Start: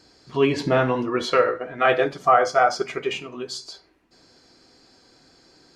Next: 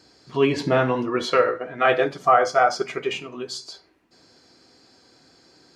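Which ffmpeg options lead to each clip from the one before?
-af "highpass=66"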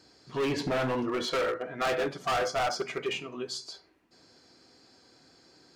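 -af "asoftclip=type=hard:threshold=0.0841,volume=0.631"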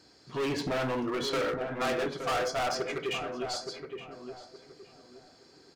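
-filter_complex "[0:a]asoftclip=type=hard:threshold=0.0398,asplit=2[s0][s1];[s1]adelay=869,lowpass=f=1200:p=1,volume=0.501,asplit=2[s2][s3];[s3]adelay=869,lowpass=f=1200:p=1,volume=0.31,asplit=2[s4][s5];[s5]adelay=869,lowpass=f=1200:p=1,volume=0.31,asplit=2[s6][s7];[s7]adelay=869,lowpass=f=1200:p=1,volume=0.31[s8];[s0][s2][s4][s6][s8]amix=inputs=5:normalize=0"

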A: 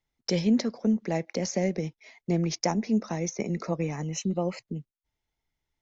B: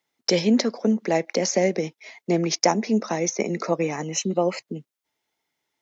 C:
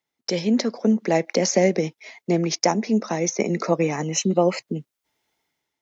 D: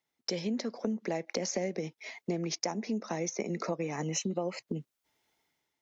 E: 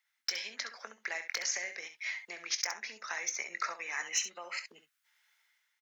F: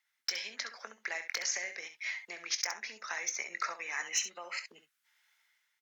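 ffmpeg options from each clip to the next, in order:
-af "highpass=280,volume=2.66"
-af "dynaudnorm=f=160:g=7:m=3.76,lowshelf=f=140:g=6.5,volume=0.531"
-af "acompressor=threshold=0.0355:ratio=5,volume=0.794"
-af "highpass=f=1600:t=q:w=2.4,asoftclip=type=hard:threshold=0.0708,aecho=1:1:23|67:0.224|0.316,volume=1.26"
-af "asoftclip=type=hard:threshold=0.0841" -ar 48000 -c:a libopus -b:a 128k

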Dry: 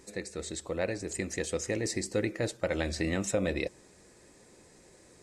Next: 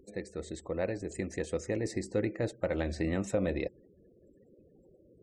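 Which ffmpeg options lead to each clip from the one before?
-af "afftfilt=real='re*gte(hypot(re,im),0.00316)':imag='im*gte(hypot(re,im),0.00316)':win_size=1024:overlap=0.75,highshelf=f=2000:g=-11"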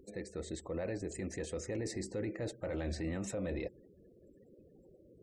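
-af "alimiter=level_in=2:limit=0.0631:level=0:latency=1:release=11,volume=0.501"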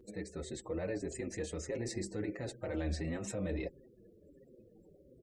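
-filter_complex "[0:a]asplit=2[s0][s1];[s1]adelay=6,afreqshift=-1.5[s2];[s0][s2]amix=inputs=2:normalize=1,volume=1.5"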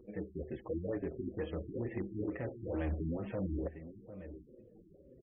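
-af "aecho=1:1:750:0.224,asoftclip=type=hard:threshold=0.0266,afftfilt=real='re*lt(b*sr/1024,370*pow(3500/370,0.5+0.5*sin(2*PI*2.2*pts/sr)))':imag='im*lt(b*sr/1024,370*pow(3500/370,0.5+0.5*sin(2*PI*2.2*pts/sr)))':win_size=1024:overlap=0.75,volume=1.19"

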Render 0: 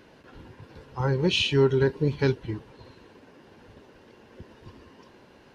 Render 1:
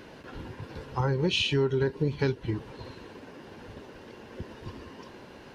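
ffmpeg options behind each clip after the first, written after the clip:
-af "acompressor=threshold=0.0251:ratio=3,volume=2"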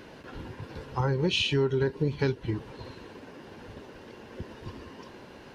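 -af anull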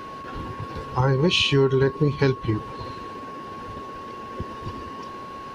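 -af "aeval=exprs='val(0)+0.00794*sin(2*PI*1100*n/s)':c=same,volume=2.11"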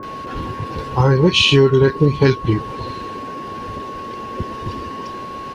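-filter_complex "[0:a]acrossover=split=1200[s0][s1];[s1]adelay=30[s2];[s0][s2]amix=inputs=2:normalize=0,volume=2.24"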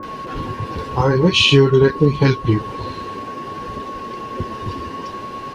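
-af "flanger=delay=3.4:depth=9:regen=-47:speed=0.51:shape=triangular,volume=1.58"

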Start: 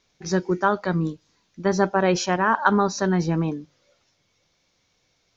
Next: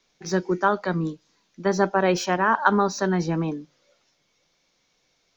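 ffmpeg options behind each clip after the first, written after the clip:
-filter_complex "[0:a]equalizer=f=81:w=1.4:g=-14,acrossover=split=180|640|3500[s0][s1][s2][s3];[s3]asoftclip=type=tanh:threshold=0.0398[s4];[s0][s1][s2][s4]amix=inputs=4:normalize=0"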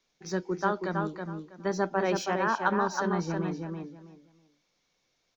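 -filter_complex "[0:a]asplit=2[s0][s1];[s1]adelay=323,lowpass=f=3700:p=1,volume=0.596,asplit=2[s2][s3];[s3]adelay=323,lowpass=f=3700:p=1,volume=0.22,asplit=2[s4][s5];[s5]adelay=323,lowpass=f=3700:p=1,volume=0.22[s6];[s0][s2][s4][s6]amix=inputs=4:normalize=0,volume=0.422"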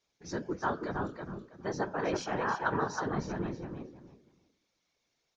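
-af "bandreject=f=96.45:t=h:w=4,bandreject=f=192.9:t=h:w=4,bandreject=f=289.35:t=h:w=4,bandreject=f=385.8:t=h:w=4,bandreject=f=482.25:t=h:w=4,bandreject=f=578.7:t=h:w=4,bandreject=f=675.15:t=h:w=4,bandreject=f=771.6:t=h:w=4,bandreject=f=868.05:t=h:w=4,bandreject=f=964.5:t=h:w=4,bandreject=f=1060.95:t=h:w=4,bandreject=f=1157.4:t=h:w=4,bandreject=f=1253.85:t=h:w=4,bandreject=f=1350.3:t=h:w=4,bandreject=f=1446.75:t=h:w=4,bandreject=f=1543.2:t=h:w=4,bandreject=f=1639.65:t=h:w=4,bandreject=f=1736.1:t=h:w=4,bandreject=f=1832.55:t=h:w=4,bandreject=f=1929:t=h:w=4,bandreject=f=2025.45:t=h:w=4,bandreject=f=2121.9:t=h:w=4,bandreject=f=2218.35:t=h:w=4,bandreject=f=2314.8:t=h:w=4,bandreject=f=2411.25:t=h:w=4,bandreject=f=2507.7:t=h:w=4,bandreject=f=2604.15:t=h:w=4,bandreject=f=2700.6:t=h:w=4,bandreject=f=2797.05:t=h:w=4,bandreject=f=2893.5:t=h:w=4,bandreject=f=2989.95:t=h:w=4,bandreject=f=3086.4:t=h:w=4,bandreject=f=3182.85:t=h:w=4,bandreject=f=3279.3:t=h:w=4,bandreject=f=3375.75:t=h:w=4,bandreject=f=3472.2:t=h:w=4,bandreject=f=3568.65:t=h:w=4,bandreject=f=3665.1:t=h:w=4,aresample=22050,aresample=44100,afftfilt=real='hypot(re,im)*cos(2*PI*random(0))':imag='hypot(re,im)*sin(2*PI*random(1))':win_size=512:overlap=0.75,volume=1.19"

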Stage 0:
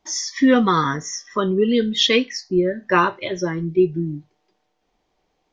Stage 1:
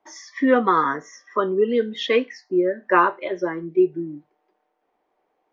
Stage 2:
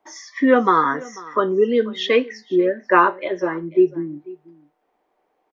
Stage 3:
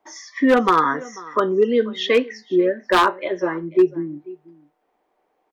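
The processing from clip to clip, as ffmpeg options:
-filter_complex "[0:a]acrossover=split=280 2100:gain=0.0794 1 0.112[s0][s1][s2];[s0][s1][s2]amix=inputs=3:normalize=0,volume=1.19"
-af "aecho=1:1:492:0.0891,volume=1.33"
-af "aeval=exprs='0.422*(abs(mod(val(0)/0.422+3,4)-2)-1)':c=same"

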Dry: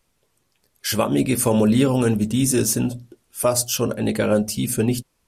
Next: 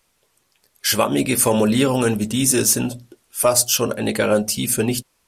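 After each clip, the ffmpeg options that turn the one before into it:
-af "lowshelf=f=400:g=-9,acontrast=44"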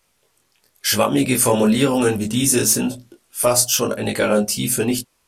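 -af "flanger=delay=19.5:depth=5.4:speed=1,volume=1.5"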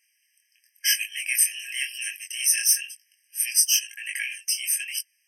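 -af "afftfilt=real='re*eq(mod(floor(b*sr/1024/1600),2),1)':imag='im*eq(mod(floor(b*sr/1024/1600),2),1)':win_size=1024:overlap=0.75"

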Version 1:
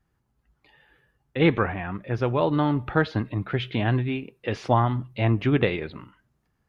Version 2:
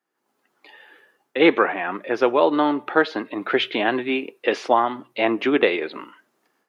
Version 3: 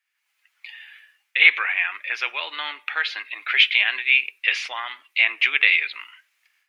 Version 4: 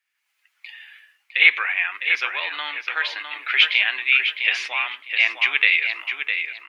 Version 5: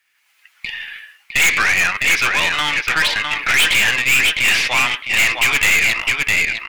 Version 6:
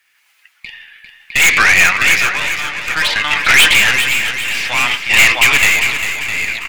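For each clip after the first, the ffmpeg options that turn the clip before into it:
-af "highpass=f=300:w=0.5412,highpass=f=300:w=1.3066,dynaudnorm=f=150:g=3:m=4.73,volume=0.75"
-filter_complex "[0:a]asplit=2[s0][s1];[s1]alimiter=limit=0.266:level=0:latency=1,volume=0.944[s2];[s0][s2]amix=inputs=2:normalize=0,highpass=f=2300:t=q:w=3.5,volume=0.668"
-filter_complex "[0:a]asplit=2[s0][s1];[s1]adelay=657,lowpass=f=3800:p=1,volume=0.501,asplit=2[s2][s3];[s3]adelay=657,lowpass=f=3800:p=1,volume=0.24,asplit=2[s4][s5];[s5]adelay=657,lowpass=f=3800:p=1,volume=0.24[s6];[s0][s2][s4][s6]amix=inputs=4:normalize=0"
-af "aeval=exprs='0.891*sin(PI/2*2.51*val(0)/0.891)':c=same,aeval=exprs='(tanh(5.01*val(0)+0.35)-tanh(0.35))/5.01':c=same,volume=1.33"
-filter_complex "[0:a]tremolo=f=0.57:d=0.81,asplit=2[s0][s1];[s1]aecho=0:1:399|798|1197|1596|1995:0.355|0.163|0.0751|0.0345|0.0159[s2];[s0][s2]amix=inputs=2:normalize=0,volume=2"

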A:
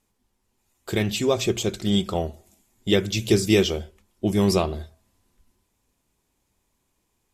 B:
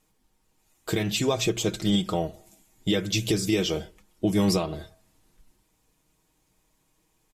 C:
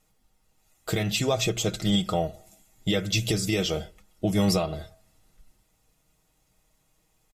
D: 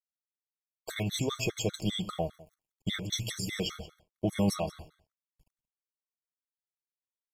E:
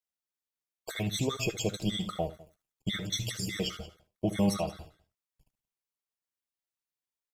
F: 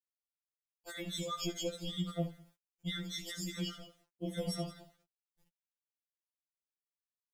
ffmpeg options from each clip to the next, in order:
-af "aecho=1:1:6.4:0.59,alimiter=limit=0.158:level=0:latency=1:release=290,volume=1.26"
-af "aecho=1:1:1.5:0.41"
-af "aeval=exprs='sgn(val(0))*max(abs(val(0))-0.00316,0)':c=same,aecho=1:1:176:0.119,afftfilt=real='re*gt(sin(2*PI*5*pts/sr)*(1-2*mod(floor(b*sr/1024/1100),2)),0)':imag='im*gt(sin(2*PI*5*pts/sr)*(1-2*mod(floor(b*sr/1024/1100),2)),0)':win_size=1024:overlap=0.75,volume=0.708"
-af "aecho=1:1:15|66|76:0.188|0.133|0.168"
-af "aphaser=in_gain=1:out_gain=1:delay=1.8:decay=0.26:speed=0.9:type=triangular,acrusher=bits=10:mix=0:aa=0.000001,afftfilt=real='re*2.83*eq(mod(b,8),0)':imag='im*2.83*eq(mod(b,8),0)':win_size=2048:overlap=0.75,volume=0.631"

